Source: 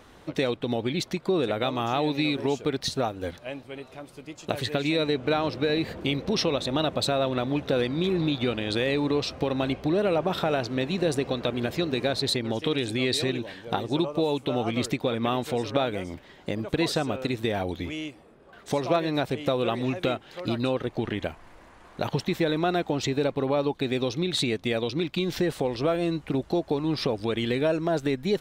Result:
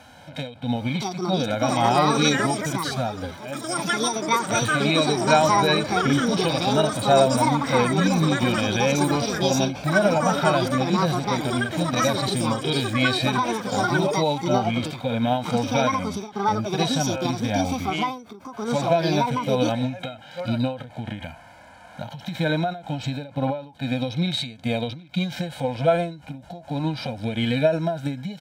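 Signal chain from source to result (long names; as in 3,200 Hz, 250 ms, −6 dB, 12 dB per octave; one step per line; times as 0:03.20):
high-pass filter 67 Hz
low-shelf EQ 110 Hz −9 dB
comb filter 1.3 ms, depth 98%
harmonic and percussive parts rebalanced percussive −18 dB
delay with pitch and tempo change per echo 763 ms, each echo +7 semitones, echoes 2
every ending faded ahead of time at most 120 dB per second
level +7 dB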